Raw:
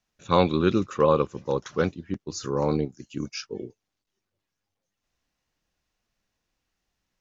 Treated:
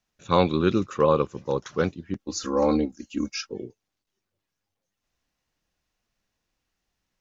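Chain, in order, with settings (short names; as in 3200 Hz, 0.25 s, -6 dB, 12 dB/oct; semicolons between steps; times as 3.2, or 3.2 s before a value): 2.18–3.52 comb 3.7 ms, depth 100%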